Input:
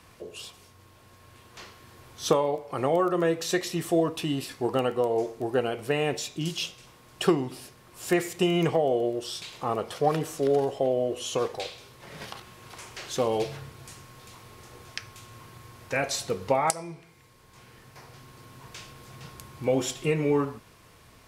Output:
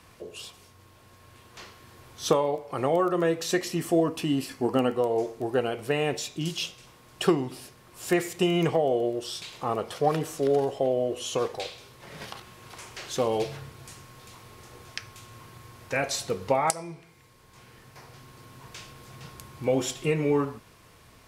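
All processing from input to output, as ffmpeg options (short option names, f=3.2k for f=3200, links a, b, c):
-filter_complex "[0:a]asettb=1/sr,asplit=3[a][b][c];[a]atrim=end=3.524[d];[b]atrim=start=3.52:end=4.95,asetpts=PTS-STARTPTS,afade=t=in:d=0.004:c=qsin,afade=t=out:st=1.426:d=0.004:c=qsin,equalizer=f=250:t=o:w=0.36:g=7.5,bandreject=f=3.7k:w=7.4[e];[c]atrim=start=4.946[f];[d][e]acrossfade=d=0.004:c1=hsin:c2=qsin[g];[g][f]acrossfade=d=0.004:c1=qsin:c2=hsin"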